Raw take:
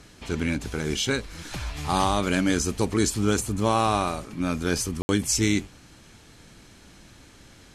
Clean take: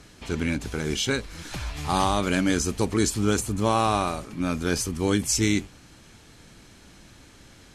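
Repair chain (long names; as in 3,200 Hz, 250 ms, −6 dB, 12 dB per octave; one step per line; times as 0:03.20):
ambience match 0:05.02–0:05.09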